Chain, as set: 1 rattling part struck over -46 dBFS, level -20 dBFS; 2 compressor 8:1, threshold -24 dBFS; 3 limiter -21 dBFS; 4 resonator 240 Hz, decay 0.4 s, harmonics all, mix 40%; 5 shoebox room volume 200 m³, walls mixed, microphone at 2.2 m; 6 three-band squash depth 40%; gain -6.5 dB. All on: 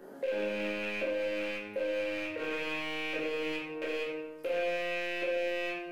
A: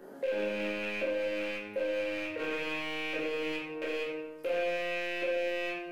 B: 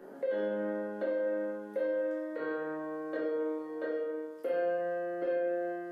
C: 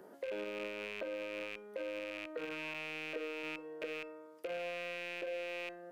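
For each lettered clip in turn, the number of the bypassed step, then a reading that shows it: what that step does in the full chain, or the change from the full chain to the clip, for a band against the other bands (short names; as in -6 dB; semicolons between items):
2, mean gain reduction 2.0 dB; 1, 2 kHz band -9.0 dB; 5, loudness change -7.5 LU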